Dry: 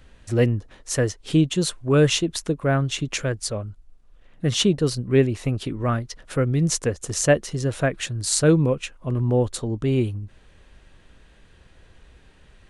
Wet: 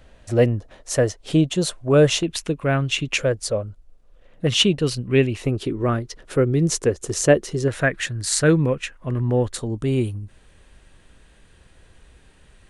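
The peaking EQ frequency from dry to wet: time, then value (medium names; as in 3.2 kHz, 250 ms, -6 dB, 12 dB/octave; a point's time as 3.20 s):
peaking EQ +9 dB 0.64 oct
630 Hz
from 2.23 s 2.6 kHz
from 3.19 s 530 Hz
from 4.47 s 2.7 kHz
from 5.42 s 380 Hz
from 7.68 s 1.8 kHz
from 9.58 s 9.2 kHz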